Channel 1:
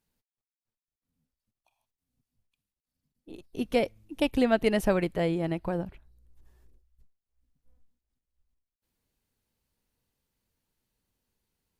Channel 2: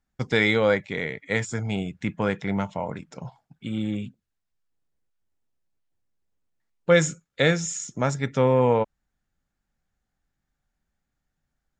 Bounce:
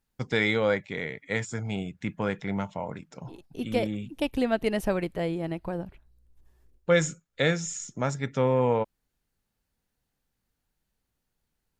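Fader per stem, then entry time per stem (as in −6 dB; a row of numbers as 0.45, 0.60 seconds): −2.0, −4.0 decibels; 0.00, 0.00 seconds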